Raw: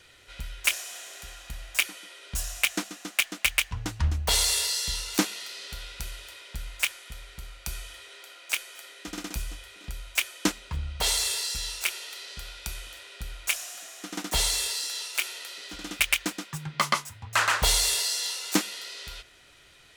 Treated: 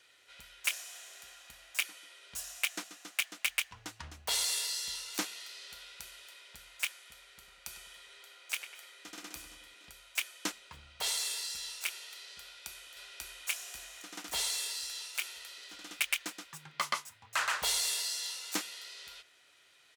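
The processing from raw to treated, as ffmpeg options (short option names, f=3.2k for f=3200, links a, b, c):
-filter_complex "[0:a]asettb=1/sr,asplit=3[a][b][c];[a]atrim=end=7.264[d];[b]atrim=start=7.26:end=9.74,asetpts=PTS-STARTPTS,afade=t=in:d=0.004:c=qsin,afade=t=out:st=2.476:d=0.004:c=qsin,asplit=2[e][f];[f]adelay=99,lowpass=f=2.5k:p=1,volume=-7.5dB,asplit=2[g][h];[h]adelay=99,lowpass=f=2.5k:p=1,volume=0.55,asplit=2[i][j];[j]adelay=99,lowpass=f=2.5k:p=1,volume=0.55,asplit=2[k][l];[l]adelay=99,lowpass=f=2.5k:p=1,volume=0.55,asplit=2[m][n];[n]adelay=99,lowpass=f=2.5k:p=1,volume=0.55,asplit=2[o][p];[p]adelay=99,lowpass=f=2.5k:p=1,volume=0.55,asplit=2[q][r];[r]adelay=99,lowpass=f=2.5k:p=1,volume=0.55[s];[e][g][i][k][m][o][q][s]amix=inputs=8:normalize=0,atrim=end_sample=109368[t];[c]atrim=start=9.736[u];[d][t]acrossfade=d=0.004:c1=hsin:c2=qsin[v];[v][u]acrossfade=d=0.004:c1=qsin:c2=hsin,asplit=2[w][x];[x]afade=t=in:st=12.42:d=0.01,afade=t=out:st=13.47:d=0.01,aecho=0:1:540|1080|1620|2160|2700|3240|3780|4320:1|0.55|0.3025|0.166375|0.0915063|0.0503284|0.0276806|0.0152244[y];[w][y]amix=inputs=2:normalize=0,highpass=f=620:p=1,volume=-7.5dB"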